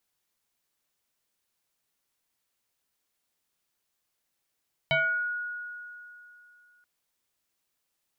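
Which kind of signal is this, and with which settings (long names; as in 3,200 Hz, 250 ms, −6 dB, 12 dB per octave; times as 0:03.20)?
two-operator FM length 1.93 s, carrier 1,450 Hz, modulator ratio 0.55, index 2.3, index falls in 0.52 s exponential, decay 2.86 s, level −20.5 dB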